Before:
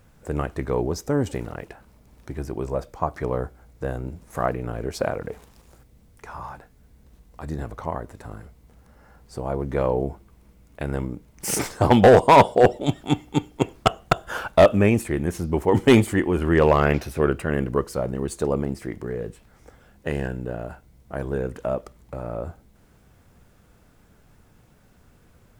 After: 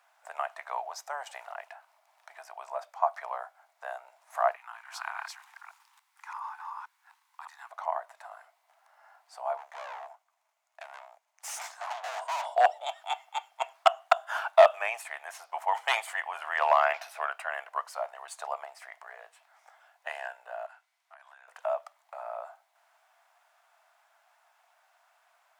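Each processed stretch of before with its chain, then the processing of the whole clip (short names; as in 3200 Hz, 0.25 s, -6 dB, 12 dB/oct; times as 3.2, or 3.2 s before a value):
4.56–7.7 reverse delay 0.287 s, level -1.5 dB + Chebyshev band-stop 250–920 Hz, order 3
9.57–12.46 G.711 law mismatch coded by A + tube stage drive 29 dB, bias 0.4 + bell 6700 Hz +6 dB 0.43 oct
20.66–21.48 HPF 1400 Hz + high shelf 11000 Hz -9.5 dB + compressor 12:1, threshold -46 dBFS
whole clip: Chebyshev high-pass 660 Hz, order 6; tilt -2.5 dB/oct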